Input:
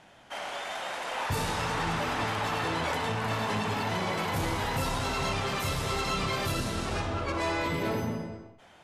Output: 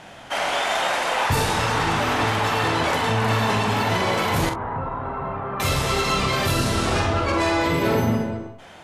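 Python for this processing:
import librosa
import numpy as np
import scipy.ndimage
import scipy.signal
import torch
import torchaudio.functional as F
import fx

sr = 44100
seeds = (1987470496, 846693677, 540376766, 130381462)

y = fx.rider(x, sr, range_db=4, speed_s=0.5)
y = fx.ladder_lowpass(y, sr, hz=1500.0, resonance_pct=35, at=(4.49, 5.6))
y = fx.room_early_taps(y, sr, ms=(45, 63), db=(-7.0, -17.5))
y = y * librosa.db_to_amplitude(8.5)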